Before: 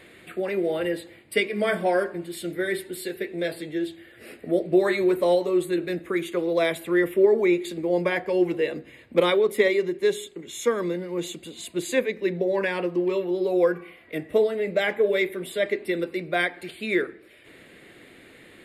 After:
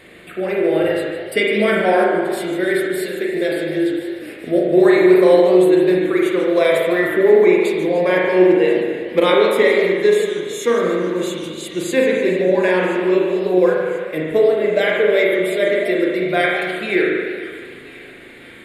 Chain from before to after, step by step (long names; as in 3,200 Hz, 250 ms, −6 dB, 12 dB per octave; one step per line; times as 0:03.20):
delay with a high-pass on its return 1,031 ms, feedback 53%, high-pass 2,000 Hz, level −17 dB
spring reverb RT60 1.5 s, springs 38 ms, chirp 40 ms, DRR −2 dB
feedback echo with a swinging delay time 149 ms, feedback 58%, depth 214 cents, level −12.5 dB
level +4 dB